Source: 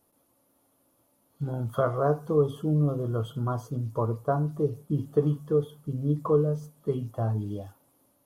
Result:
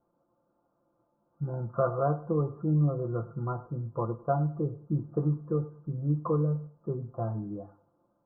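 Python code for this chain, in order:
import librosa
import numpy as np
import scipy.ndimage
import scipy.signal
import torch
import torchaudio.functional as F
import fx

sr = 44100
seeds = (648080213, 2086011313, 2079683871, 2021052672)

p1 = scipy.signal.sosfilt(scipy.signal.butter(12, 1500.0, 'lowpass', fs=sr, output='sos'), x)
p2 = p1 + 0.65 * np.pad(p1, (int(5.8 * sr / 1000.0), 0))[:len(p1)]
p3 = p2 + fx.echo_feedback(p2, sr, ms=101, feedback_pct=30, wet_db=-19.0, dry=0)
y = p3 * librosa.db_to_amplitude(-4.0)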